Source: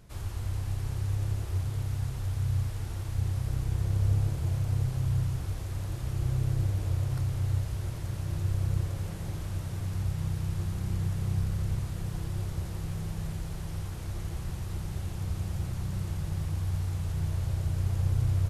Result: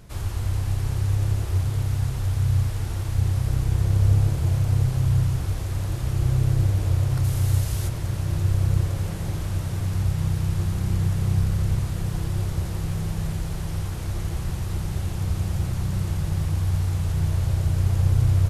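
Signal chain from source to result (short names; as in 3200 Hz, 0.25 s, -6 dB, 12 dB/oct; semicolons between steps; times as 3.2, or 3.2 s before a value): 7.23–7.87 high shelf 6400 Hz -> 3600 Hz +10 dB; gain +7.5 dB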